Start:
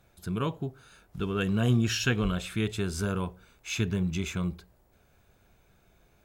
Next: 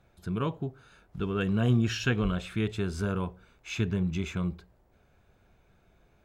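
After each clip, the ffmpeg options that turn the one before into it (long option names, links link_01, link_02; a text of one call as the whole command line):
ffmpeg -i in.wav -af "lowpass=frequency=2900:poles=1" out.wav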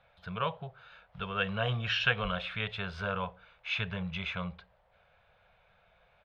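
ffmpeg -i in.wav -af "firequalizer=gain_entry='entry(190,0);entry(280,-23);entry(510,11);entry(3300,14);entry(7400,-15)':delay=0.05:min_phase=1,volume=-8dB" out.wav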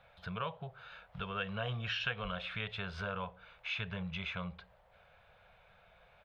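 ffmpeg -i in.wav -af "acompressor=threshold=-44dB:ratio=2,volume=2.5dB" out.wav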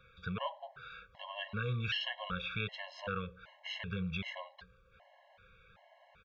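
ffmpeg -i in.wav -af "aresample=16000,aresample=44100,afftfilt=real='re*gt(sin(2*PI*1.3*pts/sr)*(1-2*mod(floor(b*sr/1024/550),2)),0)':imag='im*gt(sin(2*PI*1.3*pts/sr)*(1-2*mod(floor(b*sr/1024/550),2)),0)':win_size=1024:overlap=0.75,volume=3.5dB" out.wav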